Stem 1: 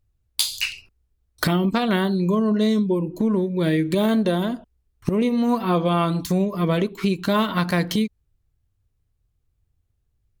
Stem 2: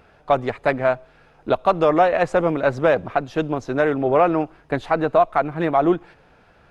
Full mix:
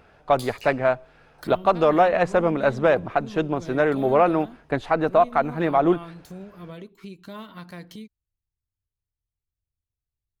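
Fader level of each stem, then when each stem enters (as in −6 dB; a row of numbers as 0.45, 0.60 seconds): −18.5, −1.5 decibels; 0.00, 0.00 seconds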